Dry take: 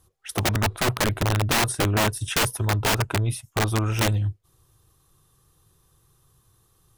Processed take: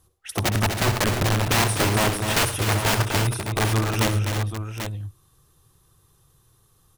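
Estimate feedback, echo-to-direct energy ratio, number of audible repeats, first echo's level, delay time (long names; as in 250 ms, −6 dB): repeats not evenly spaced, −3.0 dB, 5, −11.5 dB, 64 ms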